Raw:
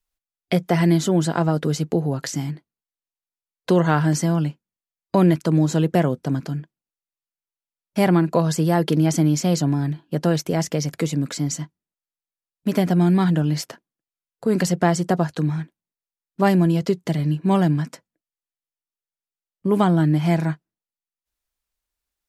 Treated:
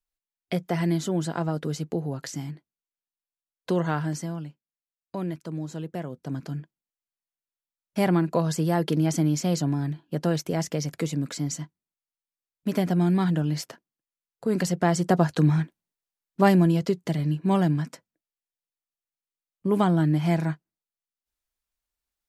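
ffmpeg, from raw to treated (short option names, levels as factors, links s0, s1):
-af "volume=3.35,afade=t=out:st=3.85:d=0.62:silence=0.421697,afade=t=in:st=6.09:d=0.5:silence=0.316228,afade=t=in:st=14.81:d=0.77:silence=0.398107,afade=t=out:st=15.58:d=1.33:silence=0.446684"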